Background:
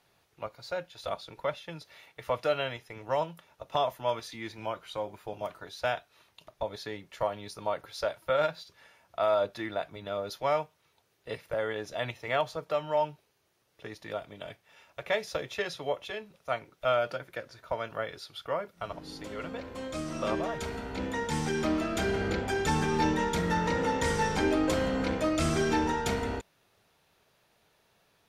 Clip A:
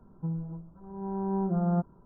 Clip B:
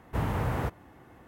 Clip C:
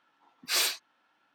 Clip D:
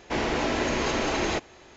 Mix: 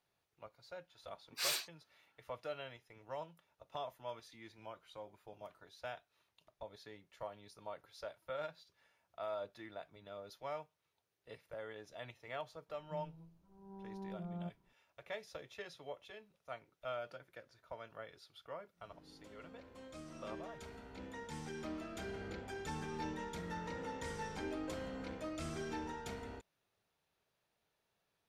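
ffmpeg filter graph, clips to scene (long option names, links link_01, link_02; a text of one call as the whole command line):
ffmpeg -i bed.wav -i cue0.wav -i cue1.wav -i cue2.wav -filter_complex "[0:a]volume=-15.5dB[link_01];[3:a]atrim=end=1.34,asetpts=PTS-STARTPTS,volume=-9.5dB,afade=type=in:duration=0.004:curve=hsin,afade=type=out:start_time=1.336:duration=0.004:curve=hsin,adelay=890[link_02];[1:a]atrim=end=2.05,asetpts=PTS-STARTPTS,volume=-17.5dB,afade=type=in:duration=0.004:curve=hsin,afade=type=out:start_time=2.046:duration=0.004:curve=hsin,adelay=559188S[link_03];[link_01][link_02][link_03]amix=inputs=3:normalize=0" out.wav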